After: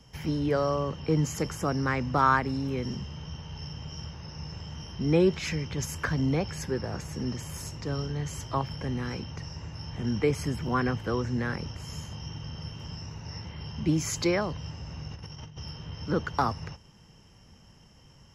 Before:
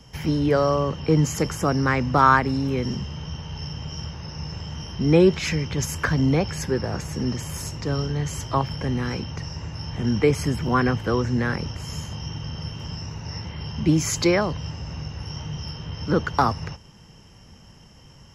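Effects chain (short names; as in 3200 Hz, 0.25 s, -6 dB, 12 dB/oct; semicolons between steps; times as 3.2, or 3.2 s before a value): 15.11–15.59 negative-ratio compressor -35 dBFS, ratio -0.5; gain -6.5 dB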